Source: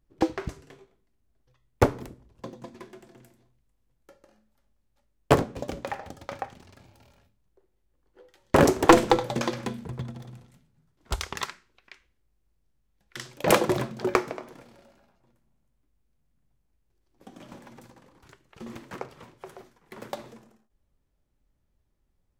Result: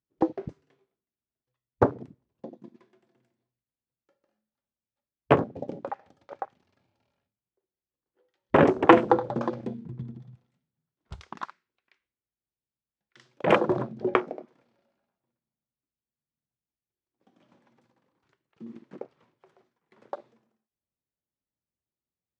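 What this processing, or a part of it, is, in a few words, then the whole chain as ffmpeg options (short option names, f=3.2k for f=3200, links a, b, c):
over-cleaned archive recording: -af "highpass=120,lowpass=5k,afwtdn=0.0282"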